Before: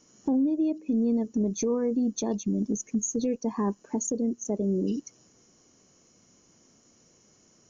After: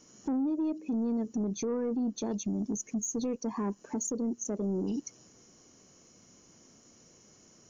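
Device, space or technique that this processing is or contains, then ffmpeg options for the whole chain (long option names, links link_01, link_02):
soft clipper into limiter: -filter_complex "[0:a]asoftclip=type=tanh:threshold=-20.5dB,alimiter=level_in=4dB:limit=-24dB:level=0:latency=1:release=136,volume=-4dB,asplit=3[link_01][link_02][link_03];[link_01]afade=type=out:start_time=1.44:duration=0.02[link_04];[link_02]lowpass=5100,afade=type=in:start_time=1.44:duration=0.02,afade=type=out:start_time=2.2:duration=0.02[link_05];[link_03]afade=type=in:start_time=2.2:duration=0.02[link_06];[link_04][link_05][link_06]amix=inputs=3:normalize=0,volume=2dB"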